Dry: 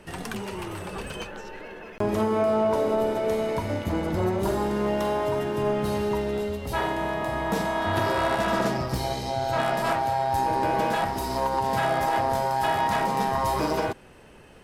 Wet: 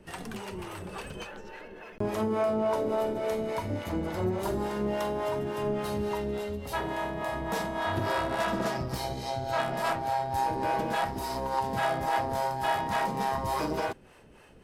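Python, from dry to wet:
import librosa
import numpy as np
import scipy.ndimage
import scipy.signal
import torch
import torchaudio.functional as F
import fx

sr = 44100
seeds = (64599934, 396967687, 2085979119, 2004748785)

y = fx.harmonic_tremolo(x, sr, hz=3.5, depth_pct=70, crossover_hz=470.0)
y = y * librosa.db_to_amplitude(-1.5)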